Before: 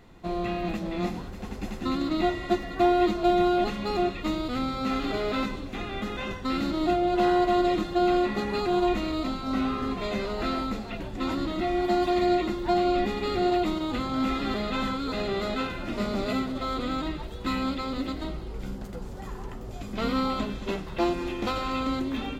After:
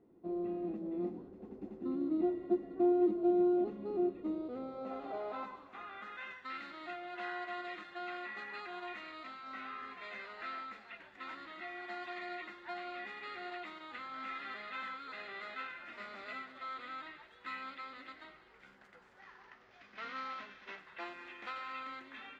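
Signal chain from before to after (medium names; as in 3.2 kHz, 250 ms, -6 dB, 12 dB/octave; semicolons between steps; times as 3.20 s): 19.19–20.79 s: CVSD coder 32 kbps; band-pass sweep 340 Hz -> 1.8 kHz, 4.17–6.31 s; trim -4.5 dB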